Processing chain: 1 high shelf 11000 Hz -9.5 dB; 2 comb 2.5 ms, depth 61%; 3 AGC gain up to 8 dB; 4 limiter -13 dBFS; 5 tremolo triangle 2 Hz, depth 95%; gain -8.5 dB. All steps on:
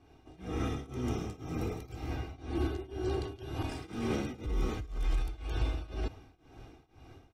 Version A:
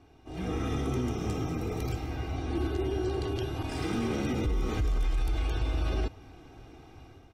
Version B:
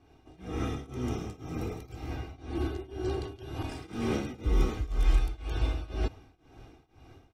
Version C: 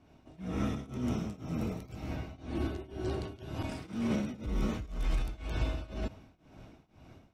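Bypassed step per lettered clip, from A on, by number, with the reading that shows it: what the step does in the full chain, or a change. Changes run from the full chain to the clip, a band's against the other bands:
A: 5, momentary loudness spread change +5 LU; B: 4, crest factor change +4.0 dB; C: 2, momentary loudness spread change -8 LU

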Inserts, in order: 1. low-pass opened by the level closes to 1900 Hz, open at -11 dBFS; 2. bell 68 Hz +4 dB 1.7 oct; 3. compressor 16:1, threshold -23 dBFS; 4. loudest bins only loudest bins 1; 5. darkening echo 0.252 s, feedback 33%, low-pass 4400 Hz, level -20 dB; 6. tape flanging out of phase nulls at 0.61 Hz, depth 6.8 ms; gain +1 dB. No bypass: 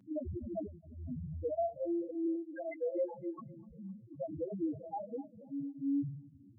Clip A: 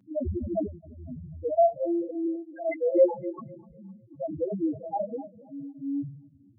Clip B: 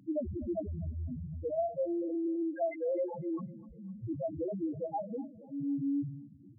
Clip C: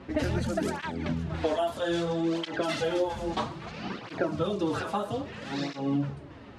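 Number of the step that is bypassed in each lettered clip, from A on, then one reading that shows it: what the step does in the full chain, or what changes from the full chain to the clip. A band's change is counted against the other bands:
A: 3, mean gain reduction 5.0 dB; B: 6, momentary loudness spread change -4 LU; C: 4, 2 kHz band +13.0 dB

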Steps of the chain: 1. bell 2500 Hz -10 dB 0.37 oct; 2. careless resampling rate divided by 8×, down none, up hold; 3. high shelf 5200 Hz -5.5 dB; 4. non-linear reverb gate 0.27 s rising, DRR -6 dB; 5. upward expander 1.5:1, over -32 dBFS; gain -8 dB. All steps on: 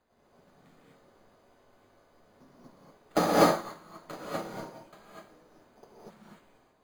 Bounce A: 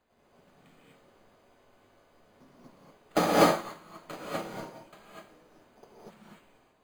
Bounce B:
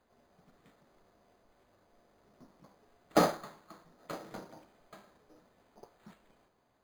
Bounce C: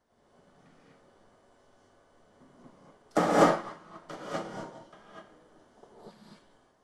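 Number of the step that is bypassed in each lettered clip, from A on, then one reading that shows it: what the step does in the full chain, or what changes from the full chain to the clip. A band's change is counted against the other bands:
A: 1, 2 kHz band +1.5 dB; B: 4, momentary loudness spread change -2 LU; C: 2, 4 kHz band -4.0 dB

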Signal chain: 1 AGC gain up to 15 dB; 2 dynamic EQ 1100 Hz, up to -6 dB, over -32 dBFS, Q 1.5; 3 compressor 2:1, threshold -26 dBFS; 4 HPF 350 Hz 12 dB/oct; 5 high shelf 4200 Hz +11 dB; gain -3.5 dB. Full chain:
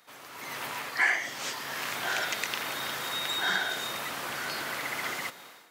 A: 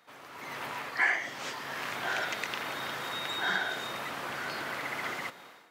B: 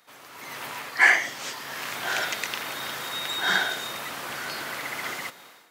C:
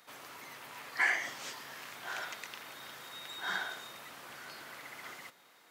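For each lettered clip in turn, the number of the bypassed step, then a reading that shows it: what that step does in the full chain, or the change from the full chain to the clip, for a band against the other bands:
5, 8 kHz band -8.0 dB; 3, crest factor change +3.0 dB; 1, crest factor change +4.0 dB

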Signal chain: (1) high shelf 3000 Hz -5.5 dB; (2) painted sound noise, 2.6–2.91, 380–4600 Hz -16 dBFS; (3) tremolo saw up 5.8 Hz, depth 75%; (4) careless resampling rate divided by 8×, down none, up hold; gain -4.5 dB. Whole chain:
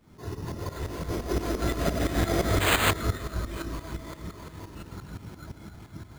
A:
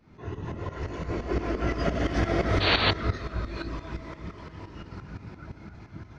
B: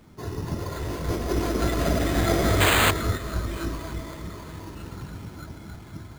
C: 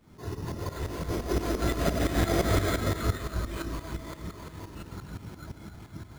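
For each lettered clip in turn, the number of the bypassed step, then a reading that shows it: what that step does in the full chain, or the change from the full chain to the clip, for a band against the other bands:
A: 4, 8 kHz band -15.5 dB; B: 3, crest factor change -1.5 dB; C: 2, 2 kHz band -4.0 dB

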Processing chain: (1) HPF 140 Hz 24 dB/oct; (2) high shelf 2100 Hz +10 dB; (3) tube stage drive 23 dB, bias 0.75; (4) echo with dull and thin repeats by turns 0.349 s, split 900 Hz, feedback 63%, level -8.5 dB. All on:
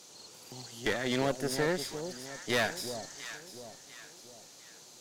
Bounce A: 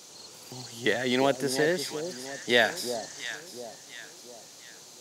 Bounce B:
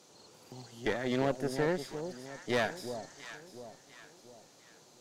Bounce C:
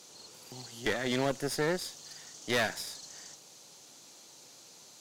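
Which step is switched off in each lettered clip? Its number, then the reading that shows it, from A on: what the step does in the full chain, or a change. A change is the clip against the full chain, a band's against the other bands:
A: 3, crest factor change +3.5 dB; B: 2, 8 kHz band -8.5 dB; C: 4, echo-to-direct -10.5 dB to none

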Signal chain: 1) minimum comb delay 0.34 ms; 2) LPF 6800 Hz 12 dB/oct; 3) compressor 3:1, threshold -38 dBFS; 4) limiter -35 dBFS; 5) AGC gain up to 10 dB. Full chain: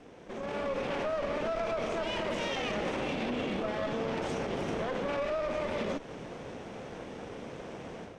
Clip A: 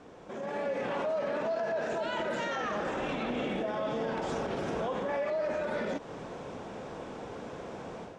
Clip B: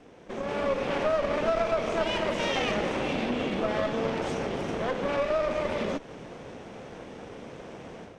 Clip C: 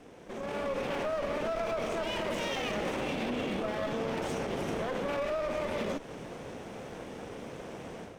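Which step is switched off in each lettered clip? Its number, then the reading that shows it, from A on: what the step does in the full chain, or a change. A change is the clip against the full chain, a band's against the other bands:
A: 1, 4 kHz band -3.5 dB; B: 4, mean gain reduction 3.0 dB; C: 2, 8 kHz band +3.0 dB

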